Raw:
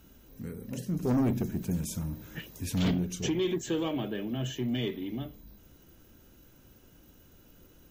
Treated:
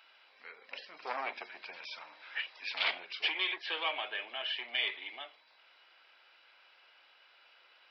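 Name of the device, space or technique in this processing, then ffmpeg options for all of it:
musical greeting card: -af "aresample=11025,aresample=44100,highpass=frequency=770:width=0.5412,highpass=frequency=770:width=1.3066,equalizer=frequency=2300:width_type=o:width=0.46:gain=8.5,volume=4.5dB"

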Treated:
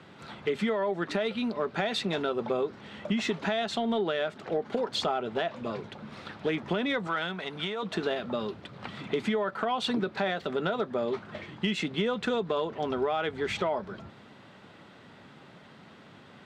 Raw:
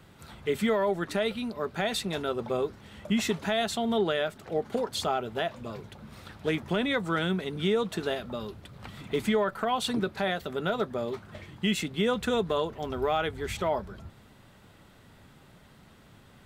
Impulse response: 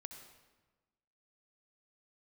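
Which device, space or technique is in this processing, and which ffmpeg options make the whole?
AM radio: -filter_complex "[0:a]highpass=170,lowpass=4400,acompressor=threshold=-30dB:ratio=6,asoftclip=type=tanh:threshold=-21dB,asettb=1/sr,asplit=3[link_01][link_02][link_03];[link_01]atrim=end=7.074[link_04];[link_02]atrim=start=7.07:end=7.83,asetpts=PTS-STARTPTS,afade=type=in:duration=0.004:curve=qsin,afade=type=out:start_time=0.756:duration=0.004:curve=qsin,lowshelf=frequency=540:width_type=q:width=1.5:gain=-7.5[link_05];[link_03]atrim=start=7.826[link_06];[link_04][link_05]acrossfade=duration=0.004:curve1=hsin:curve2=qsin[link_07];[link_07][link_06]acrossfade=duration=0.004:curve1=qsin:curve2=hsin,volume=5.5dB"

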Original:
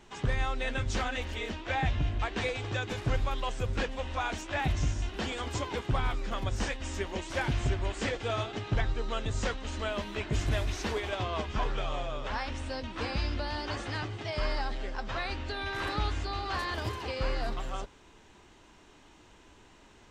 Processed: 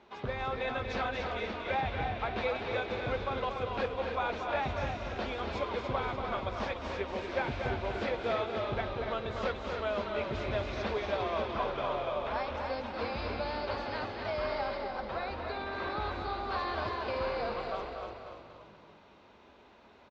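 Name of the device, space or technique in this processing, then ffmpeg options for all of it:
frequency-shifting delay pedal into a guitar cabinet: -filter_complex "[0:a]asplit=6[link_01][link_02][link_03][link_04][link_05][link_06];[link_02]adelay=288,afreqshift=-48,volume=-6dB[link_07];[link_03]adelay=576,afreqshift=-96,volume=-12.9dB[link_08];[link_04]adelay=864,afreqshift=-144,volume=-19.9dB[link_09];[link_05]adelay=1152,afreqshift=-192,volume=-26.8dB[link_10];[link_06]adelay=1440,afreqshift=-240,volume=-33.7dB[link_11];[link_01][link_07][link_08][link_09][link_10][link_11]amix=inputs=6:normalize=0,highpass=100,equalizer=frequency=110:width_type=q:width=4:gain=-9,equalizer=frequency=160:width_type=q:width=4:gain=-10,equalizer=frequency=300:width_type=q:width=4:gain=-7,equalizer=frequency=580:width_type=q:width=4:gain=4,equalizer=frequency=1800:width_type=q:width=4:gain=-6,equalizer=frequency=3000:width_type=q:width=4:gain=-8,lowpass=frequency=4000:width=0.5412,lowpass=frequency=4000:width=1.3066,asettb=1/sr,asplit=3[link_12][link_13][link_14];[link_12]atrim=end=14.784[link_15];[link_13]atrim=start=14.78:end=16.52,asetpts=PTS-STARTPTS,afade=type=in:duration=0.004:curve=qsin,afade=type=out:start_time=1.736:duration=0.004:curve=qsin,equalizer=frequency=3600:width_type=o:width=2.3:gain=-4[link_16];[link_14]atrim=start=16.516[link_17];[link_15][link_16]acrossfade=duration=0.004:curve1=hsin:curve2=qsin[link_18];[link_18][link_17]acrossfade=duration=0.004:curve1=qsin:curve2=hsin,aecho=1:1:236|472|708|944|1180:0.447|0.179|0.0715|0.0286|0.0114"

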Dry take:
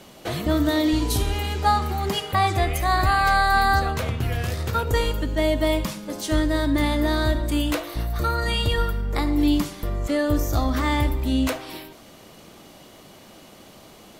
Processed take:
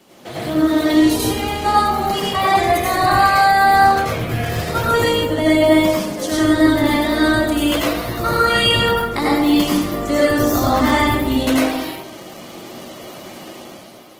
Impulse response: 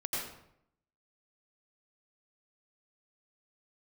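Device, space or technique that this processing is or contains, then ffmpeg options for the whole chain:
far-field microphone of a smart speaker: -filter_complex "[1:a]atrim=start_sample=2205[link_01];[0:a][link_01]afir=irnorm=-1:irlink=0,highpass=140,dynaudnorm=framelen=190:gausssize=7:maxgain=9dB,volume=-1dB" -ar 48000 -c:a libopus -b:a 16k

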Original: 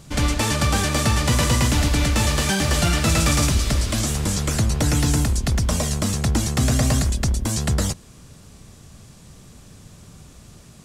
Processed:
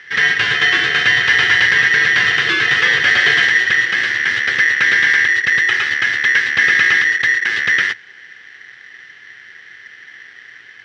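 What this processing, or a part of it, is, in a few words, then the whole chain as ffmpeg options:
ring modulator pedal into a guitar cabinet: -af "aeval=exprs='val(0)*sgn(sin(2*PI*1900*n/s))':channel_layout=same,highpass=100,equalizer=frequency=110:width_type=q:width=4:gain=8,equalizer=frequency=390:width_type=q:width=4:gain=6,equalizer=frequency=630:width_type=q:width=4:gain=-8,equalizer=frequency=950:width_type=q:width=4:gain=-4,equalizer=frequency=1600:width_type=q:width=4:gain=9,equalizer=frequency=3100:width_type=q:width=4:gain=9,lowpass=frequency=4300:width=0.5412,lowpass=frequency=4300:width=1.3066,volume=2dB"

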